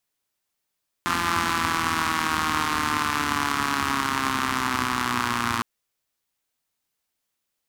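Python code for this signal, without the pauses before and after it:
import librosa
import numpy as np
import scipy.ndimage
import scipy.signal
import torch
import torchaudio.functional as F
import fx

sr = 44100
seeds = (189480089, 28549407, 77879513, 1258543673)

y = fx.engine_four_rev(sr, seeds[0], length_s=4.56, rpm=5200, resonances_hz=(95.0, 240.0, 1100.0), end_rpm=3500)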